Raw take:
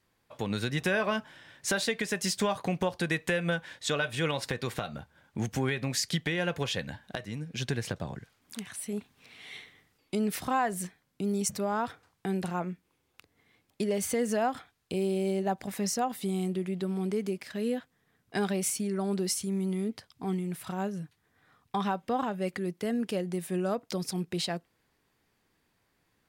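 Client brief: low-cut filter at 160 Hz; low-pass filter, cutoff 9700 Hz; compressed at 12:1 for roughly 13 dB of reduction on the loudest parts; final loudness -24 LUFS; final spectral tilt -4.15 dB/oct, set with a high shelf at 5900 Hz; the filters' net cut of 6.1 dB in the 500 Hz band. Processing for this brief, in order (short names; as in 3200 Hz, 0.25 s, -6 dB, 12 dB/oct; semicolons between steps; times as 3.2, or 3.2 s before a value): HPF 160 Hz; LPF 9700 Hz; bell 500 Hz -8 dB; high shelf 5900 Hz -6 dB; compressor 12:1, threshold -40 dBFS; gain +21 dB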